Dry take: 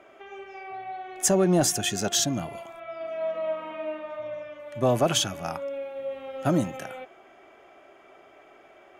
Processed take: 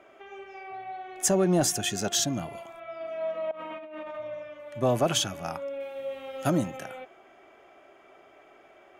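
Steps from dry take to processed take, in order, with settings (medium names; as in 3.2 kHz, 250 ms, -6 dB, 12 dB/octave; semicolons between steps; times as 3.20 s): 3.51–4.18 s: compressor with a negative ratio -38 dBFS, ratio -1; 5.80–6.50 s: treble shelf 3.2 kHz +10.5 dB; trim -2 dB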